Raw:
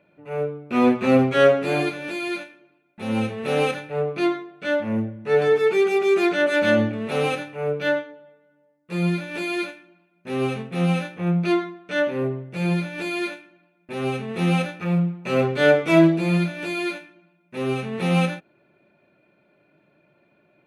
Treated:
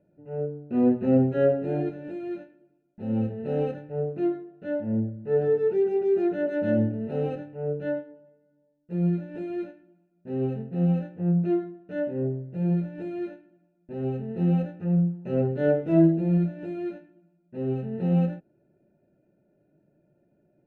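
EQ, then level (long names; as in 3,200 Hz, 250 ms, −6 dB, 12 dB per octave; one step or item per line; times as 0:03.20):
moving average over 39 samples
low-shelf EQ 73 Hz +10 dB
−2.5 dB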